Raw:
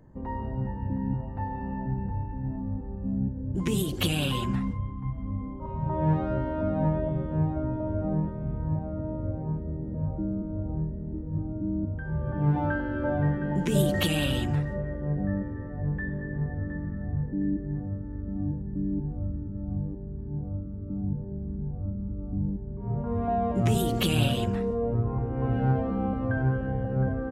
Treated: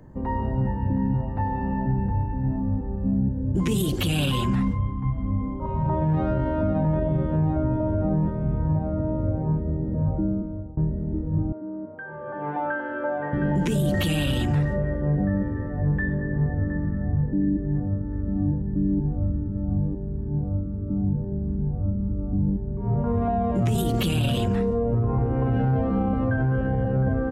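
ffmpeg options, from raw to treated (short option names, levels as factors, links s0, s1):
-filter_complex "[0:a]asettb=1/sr,asplit=3[s0][s1][s2];[s0]atrim=end=11.524[s3];[s1]atrim=start=11.52:end=13.33,asetpts=PTS-STARTPTS,afade=t=in:d=0.004:c=qsin,afade=t=out:st=1.806:d=0.004:c=qsin,highpass=520,lowpass=2100[s4];[s2]atrim=start=13.326[s5];[s3][s4]acrossfade=d=0.004:c1=hsin:c2=qsin[s6];[s6][s5]acrossfade=d=0.004:c1=qsin:c2=hsin,asettb=1/sr,asplit=3[s7][s8][s9];[s7]atrim=end=16.154[s10];[s8]atrim=start=16.15:end=18.12,asetpts=PTS-STARTPTS,afade=t=in:d=0.004:c=qsin,afade=t=out:st=1.966:d=0.004:c=qsin,lowpass=f=2200:p=1[s11];[s9]atrim=start=18.116[s12];[s10][s11]acrossfade=d=0.004:c1=hsin:c2=qsin[s13];[s13][s12]acrossfade=d=0.004:c1=qsin:c2=hsin,asplit=2[s14][s15];[s14]atrim=end=10.77,asetpts=PTS-STARTPTS,afade=t=out:st=10.2:d=0.57:silence=0.0891251[s16];[s15]atrim=start=10.77,asetpts=PTS-STARTPTS,afade=t=in:d=0.004:c=hsin:silence=0.0891251[s17];[s16][s17]concat=n=2:v=0:a=1,acrossover=split=230[s18][s19];[s19]acompressor=threshold=0.0316:ratio=6[s20];[s18][s20]amix=inputs=2:normalize=0,alimiter=limit=0.075:level=0:latency=1:release=16,volume=2.24"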